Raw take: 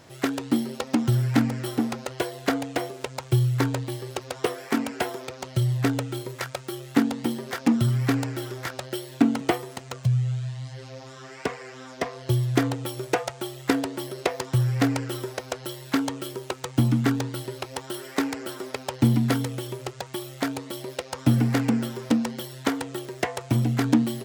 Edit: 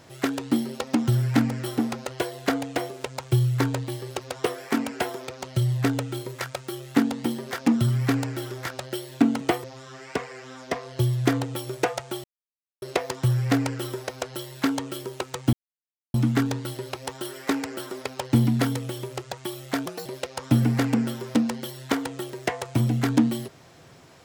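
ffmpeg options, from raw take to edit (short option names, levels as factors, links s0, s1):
-filter_complex "[0:a]asplit=7[s0][s1][s2][s3][s4][s5][s6];[s0]atrim=end=9.642[s7];[s1]atrim=start=10.938:end=13.54,asetpts=PTS-STARTPTS,afade=t=out:st=2.598:d=0.004:c=hsin[s8];[s2]atrim=start=13.54:end=14.12,asetpts=PTS-STARTPTS,volume=0[s9];[s3]atrim=start=14.12:end=16.83,asetpts=PTS-STARTPTS,afade=t=in:d=0.004:c=hsin,afade=t=out:st=2.706:d=0.004:c=hsin,apad=pad_dur=0.61[s10];[s4]atrim=start=16.83:end=20.554,asetpts=PTS-STARTPTS,afade=t=in:d=0.004:c=hsin[s11];[s5]atrim=start=20.55:end=20.81,asetpts=PTS-STARTPTS,asetrate=58653,aresample=44100,atrim=end_sample=8621,asetpts=PTS-STARTPTS[s12];[s6]atrim=start=20.806[s13];[s8][s9][s10][s11]concat=n=4:v=0:a=1[s14];[s7][s14]acrossfade=d=0.004:c1=hsin:c2=hsin[s15];[s15][s12]acrossfade=d=0.004:c1=hsin:c2=hsin[s16];[s16][s13]acrossfade=d=0.004:c1=hsin:c2=hsin"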